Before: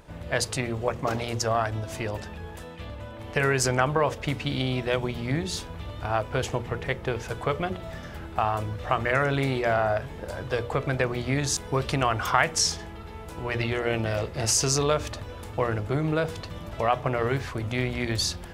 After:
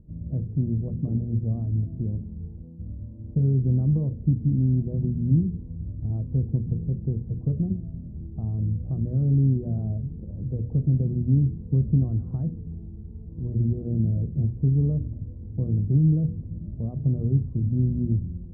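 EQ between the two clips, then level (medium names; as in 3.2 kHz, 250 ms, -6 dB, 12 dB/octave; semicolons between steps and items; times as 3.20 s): dynamic bell 170 Hz, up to +6 dB, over -40 dBFS, Q 0.91; four-pole ladder low-pass 280 Hz, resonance 20%; +8.0 dB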